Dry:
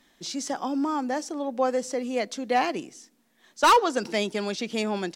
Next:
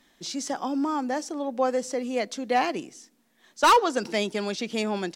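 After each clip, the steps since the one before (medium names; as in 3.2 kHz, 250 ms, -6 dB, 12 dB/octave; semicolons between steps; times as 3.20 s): no audible change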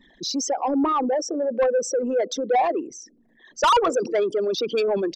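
resonances exaggerated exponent 3; saturation -21.5 dBFS, distortion -10 dB; trim +7 dB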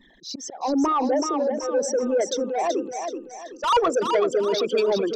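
slow attack 197 ms; thinning echo 379 ms, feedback 39%, high-pass 170 Hz, level -6 dB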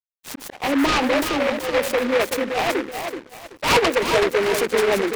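crossover distortion -43.5 dBFS; delay time shaken by noise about 1.4 kHz, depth 0.15 ms; trim +3 dB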